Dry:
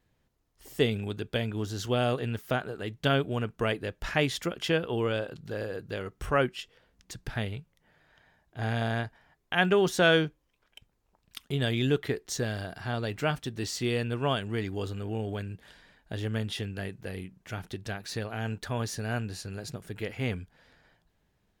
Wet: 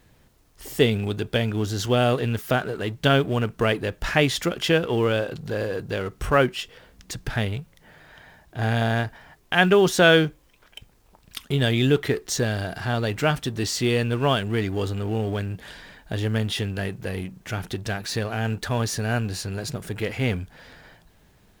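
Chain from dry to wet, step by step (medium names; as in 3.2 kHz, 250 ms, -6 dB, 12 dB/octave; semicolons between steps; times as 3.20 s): companding laws mixed up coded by mu; trim +6 dB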